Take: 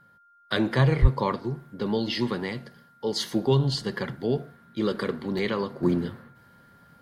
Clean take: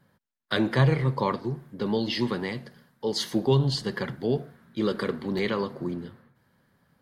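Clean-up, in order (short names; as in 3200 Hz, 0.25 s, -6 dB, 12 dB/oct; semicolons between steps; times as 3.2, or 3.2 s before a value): notch 1400 Hz, Q 30; 1.01–1.13 HPF 140 Hz 24 dB/oct; 5.83 gain correction -8.5 dB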